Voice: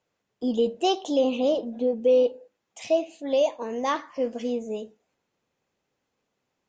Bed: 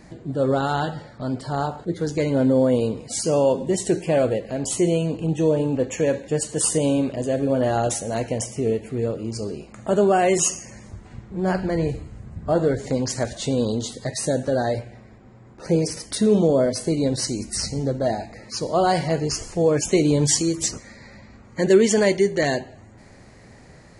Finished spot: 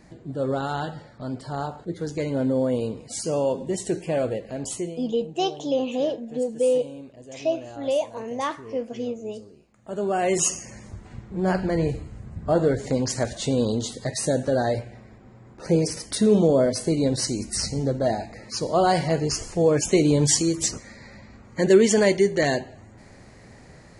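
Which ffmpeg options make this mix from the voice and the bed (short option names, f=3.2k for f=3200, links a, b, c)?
-filter_complex "[0:a]adelay=4550,volume=-1.5dB[a];[1:a]volume=13.5dB,afade=t=out:st=4.68:d=0.28:silence=0.199526,afade=t=in:st=9.81:d=0.74:silence=0.11885[b];[a][b]amix=inputs=2:normalize=0"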